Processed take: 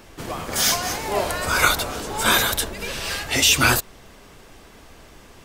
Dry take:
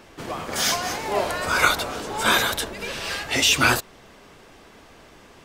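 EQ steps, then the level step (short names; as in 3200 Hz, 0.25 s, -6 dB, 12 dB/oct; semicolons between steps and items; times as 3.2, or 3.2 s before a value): low shelf 91 Hz +10.5 dB; high shelf 7300 Hz +9 dB; 0.0 dB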